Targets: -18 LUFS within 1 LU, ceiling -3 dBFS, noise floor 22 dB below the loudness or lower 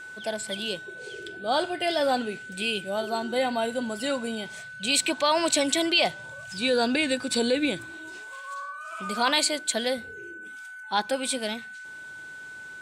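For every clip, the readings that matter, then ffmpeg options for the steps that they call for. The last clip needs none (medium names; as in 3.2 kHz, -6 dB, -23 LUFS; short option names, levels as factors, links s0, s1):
steady tone 1.5 kHz; tone level -39 dBFS; loudness -26.5 LUFS; peak level -8.5 dBFS; loudness target -18.0 LUFS
-> -af "bandreject=f=1500:w=30"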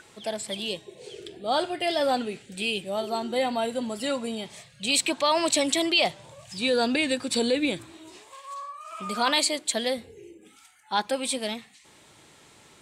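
steady tone not found; loudness -26.5 LUFS; peak level -8.5 dBFS; loudness target -18.0 LUFS
-> -af "volume=2.66,alimiter=limit=0.708:level=0:latency=1"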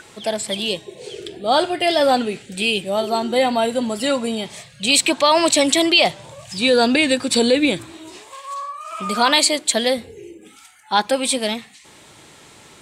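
loudness -18.0 LUFS; peak level -3.0 dBFS; noise floor -47 dBFS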